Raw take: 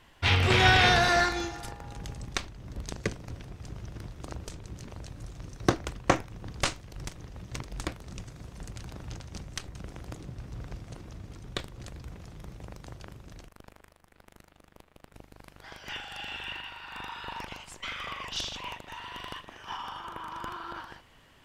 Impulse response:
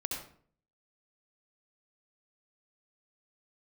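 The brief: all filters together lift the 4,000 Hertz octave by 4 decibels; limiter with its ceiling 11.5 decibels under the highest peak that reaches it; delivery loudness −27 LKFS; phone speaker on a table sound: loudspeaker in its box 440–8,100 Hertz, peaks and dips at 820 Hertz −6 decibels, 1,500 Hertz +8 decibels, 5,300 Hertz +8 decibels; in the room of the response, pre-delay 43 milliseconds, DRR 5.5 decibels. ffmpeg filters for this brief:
-filter_complex "[0:a]equalizer=frequency=4000:width_type=o:gain=3,alimiter=limit=-18.5dB:level=0:latency=1,asplit=2[link_01][link_02];[1:a]atrim=start_sample=2205,adelay=43[link_03];[link_02][link_03]afir=irnorm=-1:irlink=0,volume=-8dB[link_04];[link_01][link_04]amix=inputs=2:normalize=0,highpass=frequency=440:width=0.5412,highpass=frequency=440:width=1.3066,equalizer=frequency=820:width_type=q:width=4:gain=-6,equalizer=frequency=1500:width_type=q:width=4:gain=8,equalizer=frequency=5300:width_type=q:width=4:gain=8,lowpass=frequency=8100:width=0.5412,lowpass=frequency=8100:width=1.3066,volume=5dB"

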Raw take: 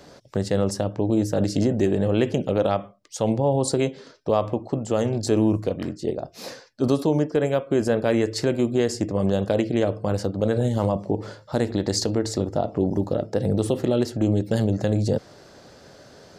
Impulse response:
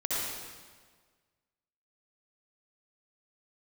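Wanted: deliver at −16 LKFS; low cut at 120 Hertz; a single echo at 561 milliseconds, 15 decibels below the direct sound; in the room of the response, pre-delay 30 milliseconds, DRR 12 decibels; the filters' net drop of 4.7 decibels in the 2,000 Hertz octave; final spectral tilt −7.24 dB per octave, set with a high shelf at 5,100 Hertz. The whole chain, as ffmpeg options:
-filter_complex "[0:a]highpass=120,equalizer=frequency=2000:width_type=o:gain=-5.5,highshelf=frequency=5100:gain=-5,aecho=1:1:561:0.178,asplit=2[link_01][link_02];[1:a]atrim=start_sample=2205,adelay=30[link_03];[link_02][link_03]afir=irnorm=-1:irlink=0,volume=-20dB[link_04];[link_01][link_04]amix=inputs=2:normalize=0,volume=8dB"

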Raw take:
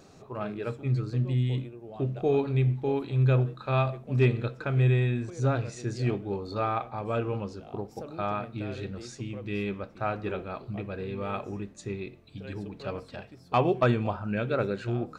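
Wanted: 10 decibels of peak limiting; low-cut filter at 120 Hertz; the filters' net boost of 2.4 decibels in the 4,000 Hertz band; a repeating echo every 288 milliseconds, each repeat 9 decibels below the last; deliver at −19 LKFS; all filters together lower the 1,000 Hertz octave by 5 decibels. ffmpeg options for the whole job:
ffmpeg -i in.wav -af "highpass=120,equalizer=frequency=1000:width_type=o:gain=-7.5,equalizer=frequency=4000:width_type=o:gain=3.5,alimiter=limit=-22dB:level=0:latency=1,aecho=1:1:288|576|864|1152:0.355|0.124|0.0435|0.0152,volume=14.5dB" out.wav

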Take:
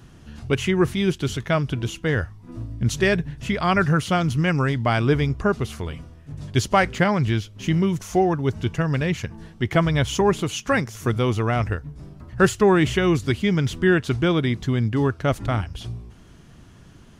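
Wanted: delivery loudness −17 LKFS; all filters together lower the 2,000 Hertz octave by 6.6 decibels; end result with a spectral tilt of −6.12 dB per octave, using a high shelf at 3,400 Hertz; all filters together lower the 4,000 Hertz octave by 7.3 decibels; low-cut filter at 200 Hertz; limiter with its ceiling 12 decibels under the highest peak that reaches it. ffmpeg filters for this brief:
ffmpeg -i in.wav -af "highpass=200,equalizer=frequency=2000:width_type=o:gain=-6.5,highshelf=frequency=3400:gain=-6,equalizer=frequency=4000:width_type=o:gain=-3,volume=12dB,alimiter=limit=-5.5dB:level=0:latency=1" out.wav

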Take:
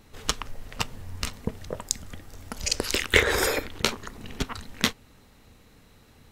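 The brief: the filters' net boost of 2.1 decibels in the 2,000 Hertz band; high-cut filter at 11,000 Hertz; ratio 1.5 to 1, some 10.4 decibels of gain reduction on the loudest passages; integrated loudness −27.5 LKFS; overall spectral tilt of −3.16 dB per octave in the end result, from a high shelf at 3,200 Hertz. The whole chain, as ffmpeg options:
ffmpeg -i in.wav -af "lowpass=11000,equalizer=frequency=2000:width_type=o:gain=4.5,highshelf=frequency=3200:gain=-6.5,acompressor=threshold=-42dB:ratio=1.5,volume=8.5dB" out.wav

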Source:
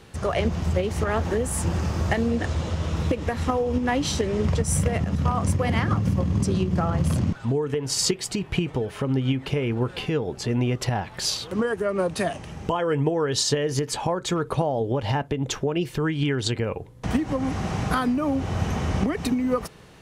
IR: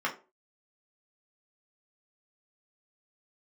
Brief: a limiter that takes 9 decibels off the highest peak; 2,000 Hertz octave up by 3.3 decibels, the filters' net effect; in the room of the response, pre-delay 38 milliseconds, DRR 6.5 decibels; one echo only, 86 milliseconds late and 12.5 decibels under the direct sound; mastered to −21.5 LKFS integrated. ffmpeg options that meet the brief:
-filter_complex "[0:a]equalizer=frequency=2000:width_type=o:gain=4,alimiter=limit=-16.5dB:level=0:latency=1,aecho=1:1:86:0.237,asplit=2[link_01][link_02];[1:a]atrim=start_sample=2205,adelay=38[link_03];[link_02][link_03]afir=irnorm=-1:irlink=0,volume=-15.5dB[link_04];[link_01][link_04]amix=inputs=2:normalize=0,volume=4dB"

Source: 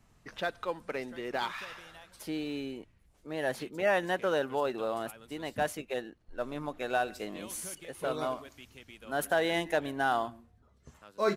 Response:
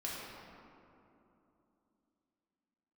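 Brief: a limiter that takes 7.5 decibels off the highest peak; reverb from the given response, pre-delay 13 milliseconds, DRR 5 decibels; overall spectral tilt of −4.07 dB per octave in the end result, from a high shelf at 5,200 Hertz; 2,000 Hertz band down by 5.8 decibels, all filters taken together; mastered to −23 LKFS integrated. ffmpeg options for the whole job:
-filter_complex "[0:a]equalizer=frequency=2000:width_type=o:gain=-7.5,highshelf=frequency=5200:gain=-4,alimiter=limit=-24dB:level=0:latency=1,asplit=2[link_01][link_02];[1:a]atrim=start_sample=2205,adelay=13[link_03];[link_02][link_03]afir=irnorm=-1:irlink=0,volume=-7.5dB[link_04];[link_01][link_04]amix=inputs=2:normalize=0,volume=13dB"

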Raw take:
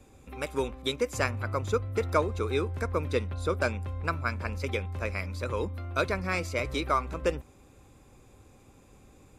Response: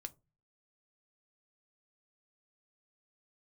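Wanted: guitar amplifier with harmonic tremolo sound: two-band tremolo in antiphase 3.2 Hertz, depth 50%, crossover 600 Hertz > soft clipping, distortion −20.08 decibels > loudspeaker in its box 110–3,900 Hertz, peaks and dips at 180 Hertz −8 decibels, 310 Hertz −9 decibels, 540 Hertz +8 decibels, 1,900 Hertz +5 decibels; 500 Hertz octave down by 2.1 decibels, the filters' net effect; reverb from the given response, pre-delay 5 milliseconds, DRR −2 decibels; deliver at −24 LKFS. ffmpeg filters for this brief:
-filter_complex "[0:a]equalizer=frequency=500:width_type=o:gain=-6.5,asplit=2[link_01][link_02];[1:a]atrim=start_sample=2205,adelay=5[link_03];[link_02][link_03]afir=irnorm=-1:irlink=0,volume=6.5dB[link_04];[link_01][link_04]amix=inputs=2:normalize=0,acrossover=split=600[link_05][link_06];[link_05]aeval=exprs='val(0)*(1-0.5/2+0.5/2*cos(2*PI*3.2*n/s))':channel_layout=same[link_07];[link_06]aeval=exprs='val(0)*(1-0.5/2-0.5/2*cos(2*PI*3.2*n/s))':channel_layout=same[link_08];[link_07][link_08]amix=inputs=2:normalize=0,asoftclip=threshold=-17.5dB,highpass=110,equalizer=frequency=180:width_type=q:width=4:gain=-8,equalizer=frequency=310:width_type=q:width=4:gain=-9,equalizer=frequency=540:width_type=q:width=4:gain=8,equalizer=frequency=1900:width_type=q:width=4:gain=5,lowpass=frequency=3900:width=0.5412,lowpass=frequency=3900:width=1.3066,volume=8dB"

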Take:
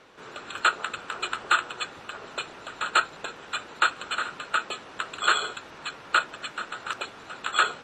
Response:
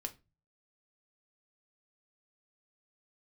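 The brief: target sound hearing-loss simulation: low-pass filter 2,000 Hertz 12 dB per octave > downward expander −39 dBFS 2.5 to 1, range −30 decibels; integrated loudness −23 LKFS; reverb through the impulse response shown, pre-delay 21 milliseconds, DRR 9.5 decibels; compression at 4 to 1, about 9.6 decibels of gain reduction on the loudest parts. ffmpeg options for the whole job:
-filter_complex "[0:a]acompressor=threshold=-28dB:ratio=4,asplit=2[link_01][link_02];[1:a]atrim=start_sample=2205,adelay=21[link_03];[link_02][link_03]afir=irnorm=-1:irlink=0,volume=-7.5dB[link_04];[link_01][link_04]amix=inputs=2:normalize=0,lowpass=2000,agate=range=-30dB:threshold=-39dB:ratio=2.5,volume=13dB"

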